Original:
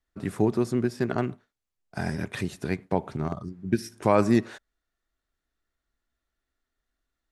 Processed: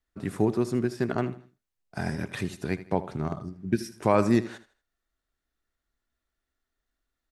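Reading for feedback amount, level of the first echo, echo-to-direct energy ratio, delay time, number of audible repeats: 33%, -15.5 dB, -15.0 dB, 79 ms, 3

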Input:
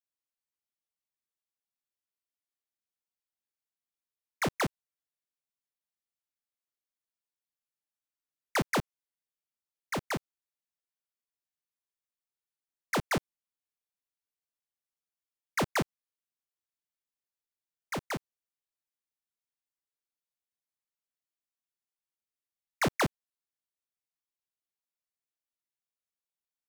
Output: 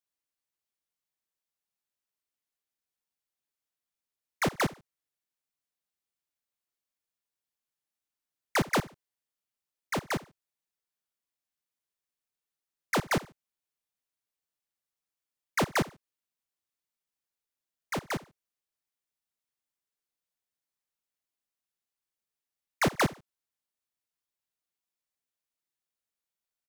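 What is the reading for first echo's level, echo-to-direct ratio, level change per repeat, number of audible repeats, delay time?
-20.0 dB, -19.5 dB, -11.0 dB, 2, 71 ms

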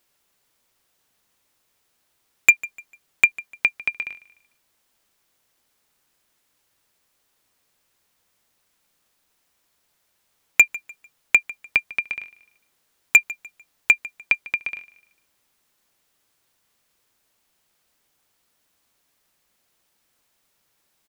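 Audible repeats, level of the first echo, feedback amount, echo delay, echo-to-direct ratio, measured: 2, -20.0 dB, 33%, 149 ms, -19.5 dB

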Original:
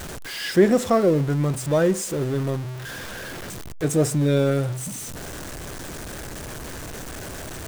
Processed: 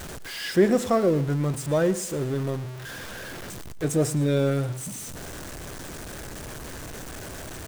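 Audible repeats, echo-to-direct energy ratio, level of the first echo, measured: 2, -17.5 dB, -18.0 dB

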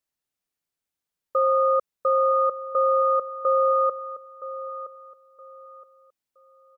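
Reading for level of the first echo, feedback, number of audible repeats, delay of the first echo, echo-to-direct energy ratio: -14.0 dB, 28%, 2, 969 ms, -13.5 dB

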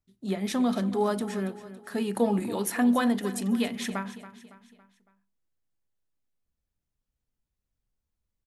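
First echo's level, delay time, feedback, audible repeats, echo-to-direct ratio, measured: -14.5 dB, 279 ms, 46%, 4, -13.5 dB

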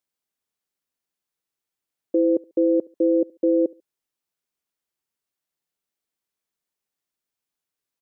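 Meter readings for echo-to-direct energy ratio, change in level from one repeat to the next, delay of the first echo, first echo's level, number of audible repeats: -23.5 dB, no regular repeats, 71 ms, -24.0 dB, 1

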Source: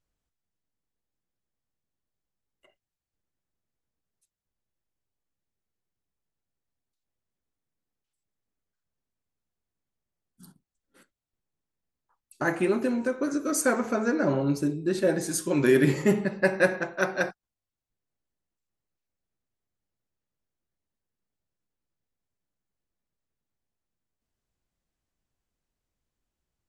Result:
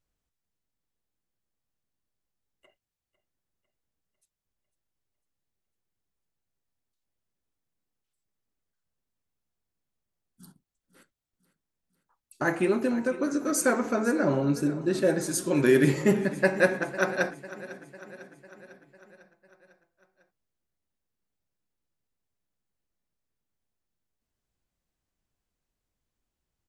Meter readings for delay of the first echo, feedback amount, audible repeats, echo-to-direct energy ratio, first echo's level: 500 ms, 59%, 4, -15.0 dB, -17.0 dB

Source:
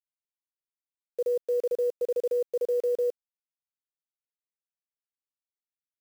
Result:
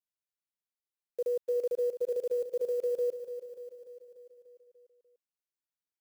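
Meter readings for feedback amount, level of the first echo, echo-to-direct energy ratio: 60%, -11.0 dB, -9.0 dB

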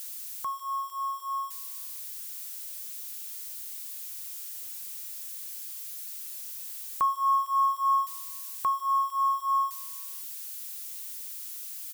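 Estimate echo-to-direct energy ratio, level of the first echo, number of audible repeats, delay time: -22.5 dB, -23.5 dB, 2, 185 ms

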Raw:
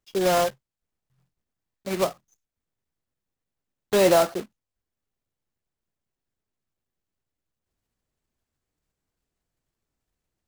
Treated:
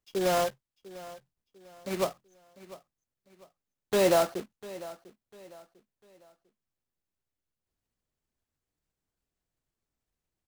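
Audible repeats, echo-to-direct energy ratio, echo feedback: 2, -17.5 dB, 35%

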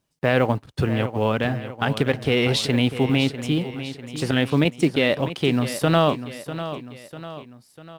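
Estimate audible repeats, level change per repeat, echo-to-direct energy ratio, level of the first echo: 3, -6.0 dB, -11.0 dB, -12.0 dB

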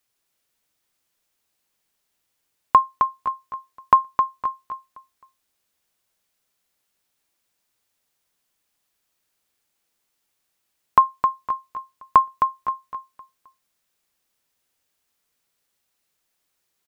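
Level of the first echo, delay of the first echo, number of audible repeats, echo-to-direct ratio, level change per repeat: -6.0 dB, 263 ms, 3, -5.5 dB, -9.0 dB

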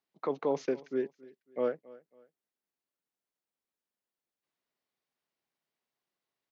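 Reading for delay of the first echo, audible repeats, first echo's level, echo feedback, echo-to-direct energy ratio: 274 ms, 2, -21.0 dB, 33%, -20.5 dB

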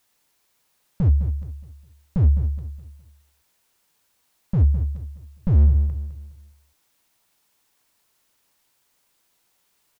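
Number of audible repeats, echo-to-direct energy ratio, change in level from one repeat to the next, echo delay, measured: 3, -10.5 dB, -9.5 dB, 208 ms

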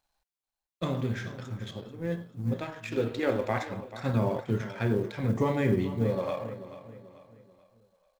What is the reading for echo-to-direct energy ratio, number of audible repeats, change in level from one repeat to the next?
-13.0 dB, 3, -8.0 dB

